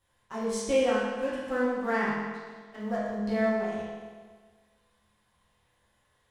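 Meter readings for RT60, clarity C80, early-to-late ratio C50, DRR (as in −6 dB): 1.5 s, 1.0 dB, −1.5 dB, −10.5 dB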